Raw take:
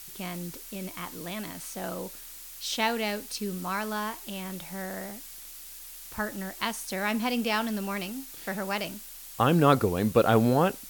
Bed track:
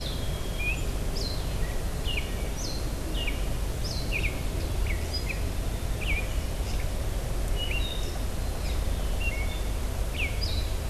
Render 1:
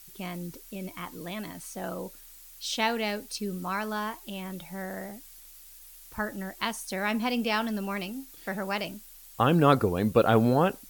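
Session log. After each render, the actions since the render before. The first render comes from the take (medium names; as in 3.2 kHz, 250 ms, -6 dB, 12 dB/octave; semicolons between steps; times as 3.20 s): noise reduction 8 dB, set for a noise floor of -45 dBFS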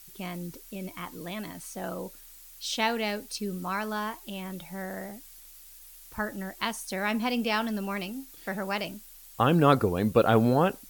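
no audible change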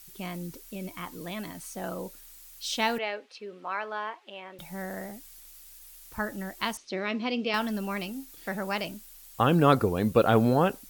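2.98–4.59 s: Chebyshev band-pass 480–2700 Hz; 6.77–7.54 s: cabinet simulation 110–4800 Hz, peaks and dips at 220 Hz -4 dB, 340 Hz +9 dB, 860 Hz -10 dB, 1.6 kHz -7 dB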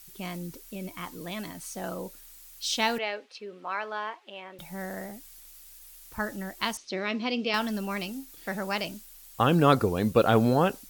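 dynamic bell 5.4 kHz, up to +4 dB, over -48 dBFS, Q 0.83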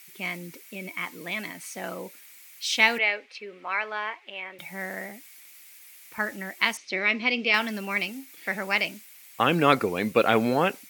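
high-pass 190 Hz 12 dB/octave; peaking EQ 2.2 kHz +14 dB 0.61 oct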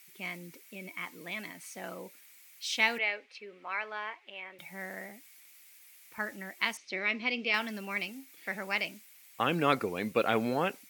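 trim -7 dB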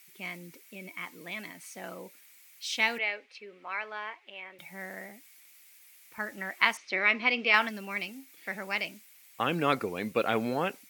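6.37–7.69 s: peaking EQ 1.2 kHz +9.5 dB 2.3 oct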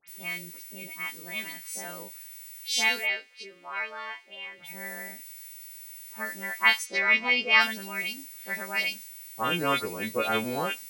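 partials quantised in pitch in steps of 2 st; phase dispersion highs, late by 80 ms, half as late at 2.5 kHz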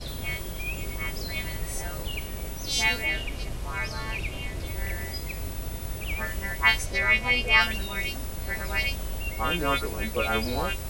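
add bed track -4 dB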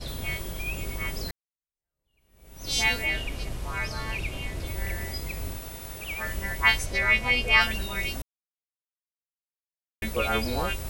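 1.31–2.70 s: fade in exponential; 5.58–6.25 s: bass shelf 300 Hz -9 dB; 8.22–10.02 s: mute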